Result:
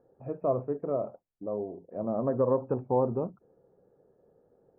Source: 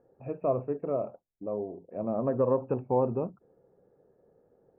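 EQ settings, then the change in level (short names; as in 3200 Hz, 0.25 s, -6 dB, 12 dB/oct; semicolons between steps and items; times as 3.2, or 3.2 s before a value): LPF 1800 Hz 24 dB/oct; 0.0 dB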